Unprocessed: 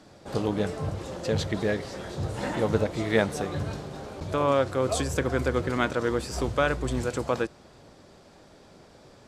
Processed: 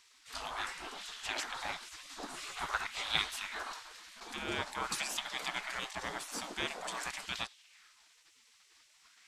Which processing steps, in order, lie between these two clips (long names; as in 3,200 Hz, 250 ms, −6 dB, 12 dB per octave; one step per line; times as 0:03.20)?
gate on every frequency bin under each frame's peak −20 dB weak
auto-filter bell 0.47 Hz 260–3,600 Hz +8 dB